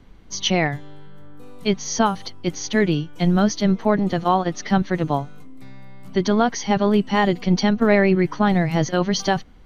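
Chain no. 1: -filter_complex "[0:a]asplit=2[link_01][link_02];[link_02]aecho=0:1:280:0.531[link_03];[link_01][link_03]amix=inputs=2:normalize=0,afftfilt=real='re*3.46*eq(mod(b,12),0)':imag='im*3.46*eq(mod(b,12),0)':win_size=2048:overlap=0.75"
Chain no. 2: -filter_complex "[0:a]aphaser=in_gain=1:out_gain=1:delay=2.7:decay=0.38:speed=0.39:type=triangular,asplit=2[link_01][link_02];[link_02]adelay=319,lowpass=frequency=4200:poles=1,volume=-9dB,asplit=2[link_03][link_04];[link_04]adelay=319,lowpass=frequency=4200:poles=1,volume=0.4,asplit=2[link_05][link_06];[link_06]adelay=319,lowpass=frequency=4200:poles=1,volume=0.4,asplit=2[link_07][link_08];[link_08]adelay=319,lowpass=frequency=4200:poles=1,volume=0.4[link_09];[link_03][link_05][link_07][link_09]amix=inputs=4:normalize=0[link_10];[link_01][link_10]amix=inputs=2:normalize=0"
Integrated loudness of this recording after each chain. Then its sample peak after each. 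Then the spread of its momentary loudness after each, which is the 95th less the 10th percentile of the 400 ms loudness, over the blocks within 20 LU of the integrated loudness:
−26.5, −19.5 LKFS; −6.0, −2.0 dBFS; 12, 14 LU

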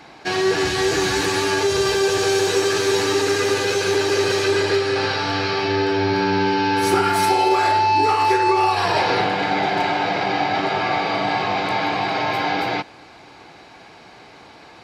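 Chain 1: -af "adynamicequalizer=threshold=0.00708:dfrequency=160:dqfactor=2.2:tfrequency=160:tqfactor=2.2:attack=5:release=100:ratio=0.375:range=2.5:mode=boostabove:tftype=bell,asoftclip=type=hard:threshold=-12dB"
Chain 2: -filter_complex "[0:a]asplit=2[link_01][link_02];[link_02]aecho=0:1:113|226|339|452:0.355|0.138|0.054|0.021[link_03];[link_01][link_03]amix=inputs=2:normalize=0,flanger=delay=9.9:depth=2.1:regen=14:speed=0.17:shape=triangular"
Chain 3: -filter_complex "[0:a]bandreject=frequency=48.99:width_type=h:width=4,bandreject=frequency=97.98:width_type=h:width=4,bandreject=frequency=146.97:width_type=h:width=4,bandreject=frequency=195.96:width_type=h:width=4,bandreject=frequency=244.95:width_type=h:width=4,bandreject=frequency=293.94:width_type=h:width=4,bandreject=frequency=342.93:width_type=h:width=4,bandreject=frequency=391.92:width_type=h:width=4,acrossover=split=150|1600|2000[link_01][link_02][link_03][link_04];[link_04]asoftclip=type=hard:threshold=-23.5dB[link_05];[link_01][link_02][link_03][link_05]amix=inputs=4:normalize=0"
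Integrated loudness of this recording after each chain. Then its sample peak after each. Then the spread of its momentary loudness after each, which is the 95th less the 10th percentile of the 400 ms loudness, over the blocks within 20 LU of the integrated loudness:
−19.0, −22.0, −20.0 LKFS; −12.0, −8.5, −6.0 dBFS; 4, 4, 5 LU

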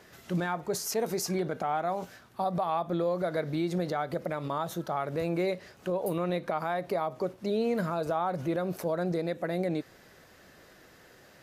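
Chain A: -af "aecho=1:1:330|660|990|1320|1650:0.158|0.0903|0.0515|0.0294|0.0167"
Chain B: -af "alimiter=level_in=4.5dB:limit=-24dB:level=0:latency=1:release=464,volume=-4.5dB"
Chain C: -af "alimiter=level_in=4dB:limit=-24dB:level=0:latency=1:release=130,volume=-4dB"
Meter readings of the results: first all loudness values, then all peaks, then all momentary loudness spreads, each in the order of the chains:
−31.5, −39.0, −38.0 LKFS; −17.0, −28.5, −28.0 dBFS; 6, 17, 19 LU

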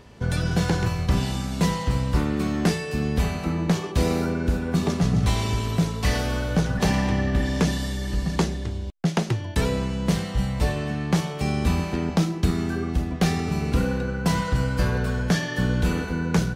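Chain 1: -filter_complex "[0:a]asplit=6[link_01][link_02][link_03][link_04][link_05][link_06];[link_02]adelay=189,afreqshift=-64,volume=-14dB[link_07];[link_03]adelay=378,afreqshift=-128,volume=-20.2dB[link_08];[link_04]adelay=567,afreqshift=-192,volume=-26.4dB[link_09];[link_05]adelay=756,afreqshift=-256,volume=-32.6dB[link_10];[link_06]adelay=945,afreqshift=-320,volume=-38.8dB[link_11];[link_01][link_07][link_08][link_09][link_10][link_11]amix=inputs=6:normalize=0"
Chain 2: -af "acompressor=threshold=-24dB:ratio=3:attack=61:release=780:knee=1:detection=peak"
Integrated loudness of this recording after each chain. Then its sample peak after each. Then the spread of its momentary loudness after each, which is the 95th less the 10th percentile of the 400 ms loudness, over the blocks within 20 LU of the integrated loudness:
−24.5, −27.5 LKFS; −9.5, −11.0 dBFS; 4, 2 LU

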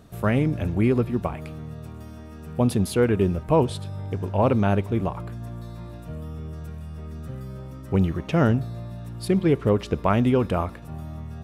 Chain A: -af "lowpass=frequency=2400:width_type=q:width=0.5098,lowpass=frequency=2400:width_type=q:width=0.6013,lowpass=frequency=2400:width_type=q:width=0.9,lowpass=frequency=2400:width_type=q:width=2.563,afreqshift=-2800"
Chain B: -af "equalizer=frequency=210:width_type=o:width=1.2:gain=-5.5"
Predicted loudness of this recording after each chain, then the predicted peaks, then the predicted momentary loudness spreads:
−20.0, −25.5 LKFS; −5.5, −9.0 dBFS; 16, 17 LU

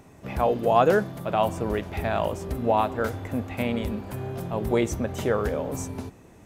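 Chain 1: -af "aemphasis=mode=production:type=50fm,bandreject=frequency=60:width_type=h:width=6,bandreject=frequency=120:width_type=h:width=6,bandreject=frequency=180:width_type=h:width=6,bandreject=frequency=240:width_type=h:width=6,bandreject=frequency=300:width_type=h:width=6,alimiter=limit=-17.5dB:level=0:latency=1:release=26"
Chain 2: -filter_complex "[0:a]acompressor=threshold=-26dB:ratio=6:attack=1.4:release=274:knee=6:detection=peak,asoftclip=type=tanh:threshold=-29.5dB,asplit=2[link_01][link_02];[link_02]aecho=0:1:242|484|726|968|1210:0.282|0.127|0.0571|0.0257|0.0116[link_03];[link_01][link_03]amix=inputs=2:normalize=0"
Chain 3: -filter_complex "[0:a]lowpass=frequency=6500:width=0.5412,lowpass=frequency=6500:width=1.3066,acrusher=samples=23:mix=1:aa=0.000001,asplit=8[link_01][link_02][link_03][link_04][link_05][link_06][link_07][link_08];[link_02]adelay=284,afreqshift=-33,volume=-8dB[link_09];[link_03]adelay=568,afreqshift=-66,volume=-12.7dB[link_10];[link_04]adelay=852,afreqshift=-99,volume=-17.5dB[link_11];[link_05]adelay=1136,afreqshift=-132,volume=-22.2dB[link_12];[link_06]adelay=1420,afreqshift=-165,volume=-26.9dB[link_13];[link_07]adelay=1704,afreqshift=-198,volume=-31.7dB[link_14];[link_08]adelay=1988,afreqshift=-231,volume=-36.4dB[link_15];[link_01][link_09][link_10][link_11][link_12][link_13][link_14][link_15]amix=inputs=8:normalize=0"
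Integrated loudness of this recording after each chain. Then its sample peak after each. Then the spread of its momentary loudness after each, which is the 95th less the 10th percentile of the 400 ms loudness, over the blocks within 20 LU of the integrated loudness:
−29.0, −36.5, −25.0 LKFS; −17.5, −27.0, −6.0 dBFS; 5, 2, 11 LU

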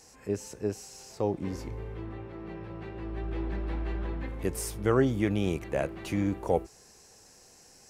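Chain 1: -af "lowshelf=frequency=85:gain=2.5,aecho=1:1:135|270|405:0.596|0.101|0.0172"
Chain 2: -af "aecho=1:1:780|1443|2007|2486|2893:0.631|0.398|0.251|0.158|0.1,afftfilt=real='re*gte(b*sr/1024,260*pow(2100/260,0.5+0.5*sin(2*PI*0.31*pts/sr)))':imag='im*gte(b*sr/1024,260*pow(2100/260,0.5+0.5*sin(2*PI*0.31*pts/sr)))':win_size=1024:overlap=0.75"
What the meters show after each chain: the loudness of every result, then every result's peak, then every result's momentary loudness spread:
−31.0, −37.0 LKFS; −10.5, −13.5 dBFS; 15, 18 LU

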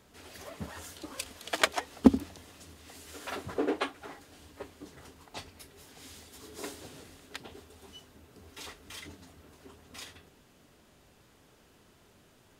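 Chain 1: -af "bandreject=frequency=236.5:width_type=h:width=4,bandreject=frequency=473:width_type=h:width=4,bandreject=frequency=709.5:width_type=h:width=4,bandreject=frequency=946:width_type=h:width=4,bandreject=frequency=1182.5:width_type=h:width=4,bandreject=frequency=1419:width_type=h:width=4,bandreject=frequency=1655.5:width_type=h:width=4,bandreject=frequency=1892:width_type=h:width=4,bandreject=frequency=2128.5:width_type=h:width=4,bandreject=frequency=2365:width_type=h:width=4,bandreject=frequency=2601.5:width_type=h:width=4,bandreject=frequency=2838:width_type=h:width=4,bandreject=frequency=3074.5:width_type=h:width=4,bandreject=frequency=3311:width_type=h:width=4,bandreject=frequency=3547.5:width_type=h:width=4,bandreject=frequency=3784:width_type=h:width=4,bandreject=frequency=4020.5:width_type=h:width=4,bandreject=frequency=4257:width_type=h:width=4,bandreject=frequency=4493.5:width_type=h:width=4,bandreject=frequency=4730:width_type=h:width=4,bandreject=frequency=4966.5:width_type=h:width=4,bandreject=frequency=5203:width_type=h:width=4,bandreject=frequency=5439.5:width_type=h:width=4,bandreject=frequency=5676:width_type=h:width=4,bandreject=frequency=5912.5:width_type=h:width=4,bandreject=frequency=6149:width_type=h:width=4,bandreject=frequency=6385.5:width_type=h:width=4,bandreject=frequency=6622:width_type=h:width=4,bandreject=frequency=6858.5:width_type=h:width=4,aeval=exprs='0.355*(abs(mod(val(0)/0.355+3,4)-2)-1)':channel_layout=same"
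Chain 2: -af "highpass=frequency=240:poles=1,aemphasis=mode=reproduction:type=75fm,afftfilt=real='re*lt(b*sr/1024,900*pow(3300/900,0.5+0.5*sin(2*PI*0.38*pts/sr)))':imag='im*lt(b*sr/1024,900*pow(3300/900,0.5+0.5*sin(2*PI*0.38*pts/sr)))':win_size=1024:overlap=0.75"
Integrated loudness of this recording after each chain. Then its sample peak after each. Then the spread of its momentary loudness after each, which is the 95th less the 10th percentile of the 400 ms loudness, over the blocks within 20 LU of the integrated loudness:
−35.5, −35.0 LKFS; −9.0, −6.0 dBFS; 22, 25 LU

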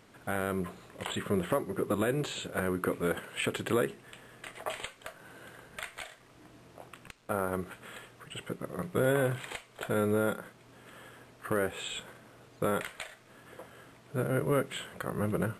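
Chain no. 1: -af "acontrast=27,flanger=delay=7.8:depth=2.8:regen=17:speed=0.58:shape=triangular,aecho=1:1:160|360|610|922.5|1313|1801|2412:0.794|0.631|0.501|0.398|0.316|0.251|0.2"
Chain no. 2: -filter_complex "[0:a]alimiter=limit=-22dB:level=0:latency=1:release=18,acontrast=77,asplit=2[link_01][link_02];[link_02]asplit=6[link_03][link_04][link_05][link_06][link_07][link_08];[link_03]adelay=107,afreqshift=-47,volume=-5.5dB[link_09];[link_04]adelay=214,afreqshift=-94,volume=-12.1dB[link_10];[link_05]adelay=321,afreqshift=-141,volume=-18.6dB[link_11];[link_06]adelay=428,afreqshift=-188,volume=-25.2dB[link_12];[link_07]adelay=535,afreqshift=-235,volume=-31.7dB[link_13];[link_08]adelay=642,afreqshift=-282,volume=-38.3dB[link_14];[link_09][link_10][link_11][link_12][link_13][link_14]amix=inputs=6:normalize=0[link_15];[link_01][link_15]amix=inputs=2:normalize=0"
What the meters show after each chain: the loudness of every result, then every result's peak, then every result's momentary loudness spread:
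−29.0, −28.5 LKFS; −10.0, −11.5 dBFS; 11, 18 LU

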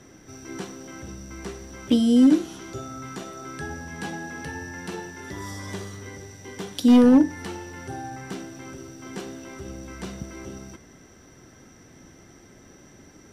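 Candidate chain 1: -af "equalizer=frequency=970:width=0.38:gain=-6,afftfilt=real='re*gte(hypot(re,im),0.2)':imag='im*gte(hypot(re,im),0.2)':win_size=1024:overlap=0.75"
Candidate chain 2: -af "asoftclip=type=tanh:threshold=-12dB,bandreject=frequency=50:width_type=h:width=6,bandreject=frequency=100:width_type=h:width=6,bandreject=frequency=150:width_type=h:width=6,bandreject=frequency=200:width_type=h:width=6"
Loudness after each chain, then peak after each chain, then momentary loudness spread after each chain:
−20.5, −27.0 LKFS; −11.0, −12.0 dBFS; 10, 21 LU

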